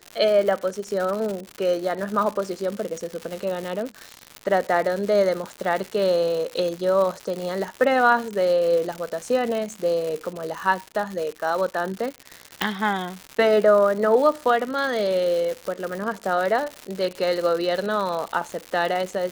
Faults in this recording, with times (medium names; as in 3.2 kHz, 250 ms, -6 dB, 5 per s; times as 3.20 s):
crackle 200 per s -27 dBFS
12.62 s: pop -6 dBFS